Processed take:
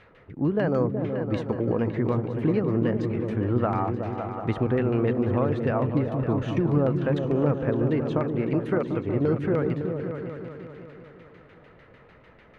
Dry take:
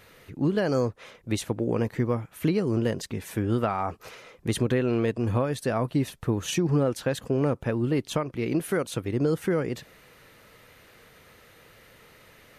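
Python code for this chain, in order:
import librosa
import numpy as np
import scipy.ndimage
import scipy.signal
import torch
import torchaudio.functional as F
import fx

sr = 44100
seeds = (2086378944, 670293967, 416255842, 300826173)

y = fx.filter_lfo_lowpass(x, sr, shape='saw_down', hz=6.7, low_hz=800.0, high_hz=2800.0, q=0.97)
y = fx.echo_opening(y, sr, ms=186, hz=200, octaves=2, feedback_pct=70, wet_db=-3)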